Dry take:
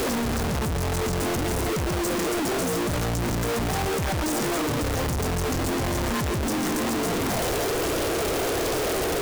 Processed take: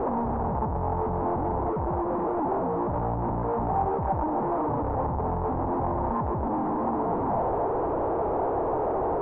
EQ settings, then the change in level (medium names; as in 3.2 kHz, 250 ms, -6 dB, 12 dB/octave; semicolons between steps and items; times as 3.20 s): four-pole ladder low-pass 990 Hz, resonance 65%; distance through air 75 m; +7.5 dB